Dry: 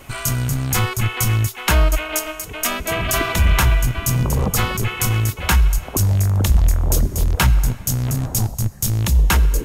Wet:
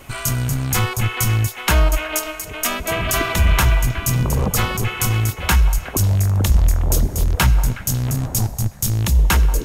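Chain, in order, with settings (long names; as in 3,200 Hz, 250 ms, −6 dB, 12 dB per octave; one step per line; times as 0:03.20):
echo through a band-pass that steps 183 ms, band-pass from 680 Hz, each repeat 1.4 octaves, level −9.5 dB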